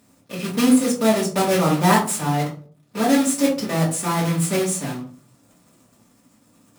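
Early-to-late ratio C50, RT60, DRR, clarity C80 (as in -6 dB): 8.5 dB, 0.45 s, -6.0 dB, 14.0 dB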